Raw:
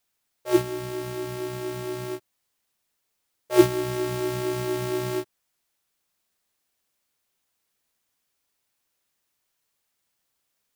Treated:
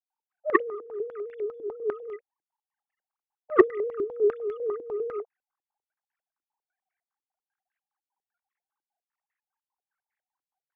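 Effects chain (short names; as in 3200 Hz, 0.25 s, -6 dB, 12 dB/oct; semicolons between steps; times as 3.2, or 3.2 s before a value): sine-wave speech; added harmonics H 3 -16 dB, 7 -13 dB, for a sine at -2 dBFS; stepped low-pass 10 Hz 330–1900 Hz; gain -4 dB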